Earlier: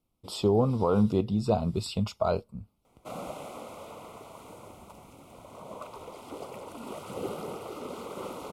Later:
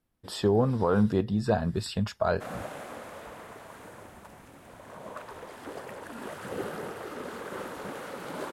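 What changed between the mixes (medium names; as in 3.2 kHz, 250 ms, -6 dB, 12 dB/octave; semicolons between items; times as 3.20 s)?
background: entry -0.65 s; master: remove Butterworth band-stop 1.7 kHz, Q 2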